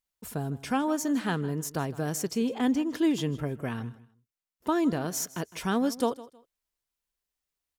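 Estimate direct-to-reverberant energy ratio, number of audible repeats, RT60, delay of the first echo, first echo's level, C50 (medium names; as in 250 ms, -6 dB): no reverb, 2, no reverb, 158 ms, -18.5 dB, no reverb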